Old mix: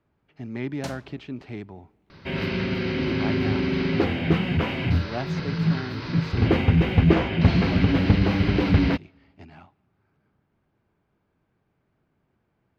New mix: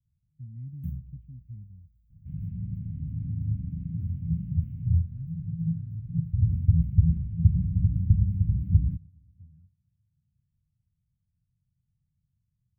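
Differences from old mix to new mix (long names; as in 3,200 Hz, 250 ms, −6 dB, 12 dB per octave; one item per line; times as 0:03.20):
first sound +11.5 dB
second sound: send +7.0 dB
master: add inverse Chebyshev band-stop filter 360–9,700 Hz, stop band 50 dB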